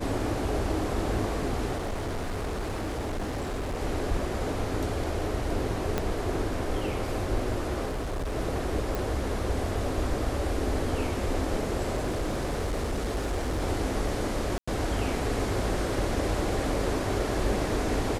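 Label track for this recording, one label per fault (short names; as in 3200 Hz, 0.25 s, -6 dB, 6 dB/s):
1.760000	3.810000	clipped -28 dBFS
5.980000	5.980000	pop -13 dBFS
7.880000	8.370000	clipped -28 dBFS
8.950000	8.950000	pop
11.950000	13.620000	clipped -25 dBFS
14.580000	14.680000	gap 95 ms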